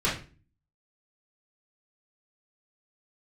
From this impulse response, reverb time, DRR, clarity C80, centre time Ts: 0.35 s, −8.0 dB, 12.5 dB, 32 ms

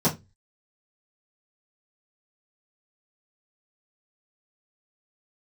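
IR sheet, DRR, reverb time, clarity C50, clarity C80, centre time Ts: −10.5 dB, 0.20 s, 14.5 dB, 23.5 dB, 16 ms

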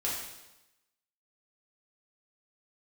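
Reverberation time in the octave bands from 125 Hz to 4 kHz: 1.0, 1.0, 1.0, 0.95, 0.95, 0.95 seconds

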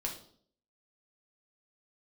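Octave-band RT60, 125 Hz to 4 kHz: 0.65, 0.65, 0.65, 0.50, 0.40, 0.50 seconds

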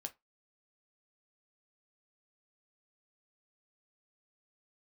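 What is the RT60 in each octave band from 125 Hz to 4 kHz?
0.15, 0.20, 0.20, 0.20, 0.15, 0.15 seconds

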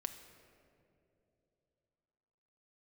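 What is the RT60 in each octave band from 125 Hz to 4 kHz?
3.6, 3.3, 3.4, 2.4, 1.8, 1.3 seconds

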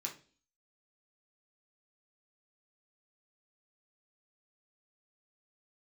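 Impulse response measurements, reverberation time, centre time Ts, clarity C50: 0.40 s, 16 ms, 10.5 dB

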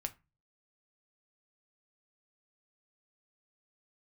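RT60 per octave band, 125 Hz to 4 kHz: 0.55, 0.40, 0.25, 0.25, 0.25, 0.20 seconds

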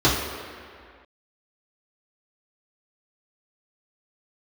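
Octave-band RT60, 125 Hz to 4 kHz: 1.6, 2.0, 2.0, 2.2, 2.3, 1.6 seconds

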